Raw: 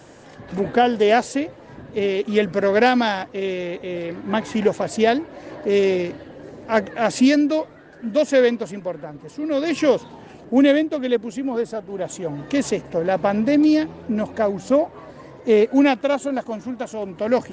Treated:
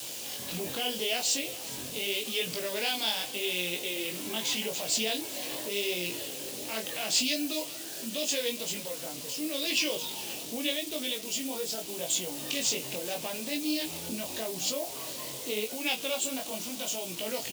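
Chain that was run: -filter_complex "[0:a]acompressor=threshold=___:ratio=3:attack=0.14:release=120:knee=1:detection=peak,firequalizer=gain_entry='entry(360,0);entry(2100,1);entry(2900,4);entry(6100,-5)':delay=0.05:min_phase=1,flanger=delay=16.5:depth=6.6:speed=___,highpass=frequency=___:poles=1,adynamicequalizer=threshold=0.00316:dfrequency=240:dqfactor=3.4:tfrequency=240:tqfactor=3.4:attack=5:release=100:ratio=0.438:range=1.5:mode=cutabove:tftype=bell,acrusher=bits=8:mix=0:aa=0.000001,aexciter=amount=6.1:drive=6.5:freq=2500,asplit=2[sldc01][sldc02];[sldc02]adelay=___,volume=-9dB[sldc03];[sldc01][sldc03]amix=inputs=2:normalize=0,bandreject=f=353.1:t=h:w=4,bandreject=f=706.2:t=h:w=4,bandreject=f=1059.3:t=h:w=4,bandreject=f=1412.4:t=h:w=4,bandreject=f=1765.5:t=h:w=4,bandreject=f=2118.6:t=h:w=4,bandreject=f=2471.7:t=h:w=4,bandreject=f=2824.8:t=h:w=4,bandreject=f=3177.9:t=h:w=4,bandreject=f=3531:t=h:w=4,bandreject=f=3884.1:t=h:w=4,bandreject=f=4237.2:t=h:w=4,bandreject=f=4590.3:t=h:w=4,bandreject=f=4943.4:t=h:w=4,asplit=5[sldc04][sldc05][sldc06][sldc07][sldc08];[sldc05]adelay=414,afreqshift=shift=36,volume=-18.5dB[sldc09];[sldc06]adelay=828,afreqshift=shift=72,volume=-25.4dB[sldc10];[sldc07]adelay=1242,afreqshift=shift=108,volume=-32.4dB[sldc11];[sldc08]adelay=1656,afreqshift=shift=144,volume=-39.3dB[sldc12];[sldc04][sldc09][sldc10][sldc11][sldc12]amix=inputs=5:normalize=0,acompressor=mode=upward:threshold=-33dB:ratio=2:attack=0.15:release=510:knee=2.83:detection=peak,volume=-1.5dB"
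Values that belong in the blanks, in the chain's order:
-30dB, 0.82, 170, 23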